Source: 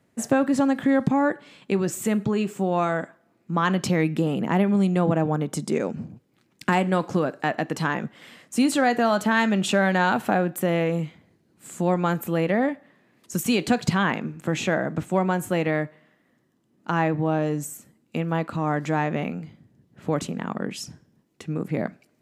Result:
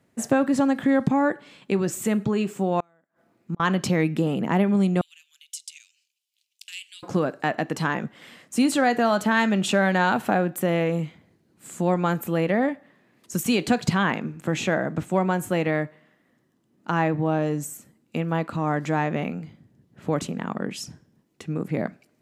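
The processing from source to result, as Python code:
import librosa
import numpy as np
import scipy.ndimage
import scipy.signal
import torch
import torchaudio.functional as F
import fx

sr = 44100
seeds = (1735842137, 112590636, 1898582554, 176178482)

y = fx.gate_flip(x, sr, shuts_db=-20.0, range_db=-37, at=(2.8, 3.6))
y = fx.ellip_highpass(y, sr, hz=2800.0, order=4, stop_db=80, at=(5.01, 7.03))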